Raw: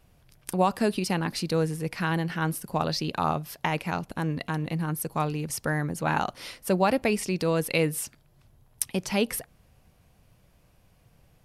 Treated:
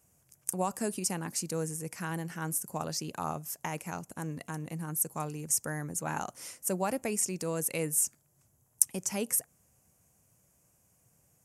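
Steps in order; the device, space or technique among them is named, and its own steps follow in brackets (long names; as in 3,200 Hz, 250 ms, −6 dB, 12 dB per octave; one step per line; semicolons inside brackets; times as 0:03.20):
budget condenser microphone (high-pass filter 87 Hz; high shelf with overshoot 5,300 Hz +10.5 dB, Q 3)
level −8.5 dB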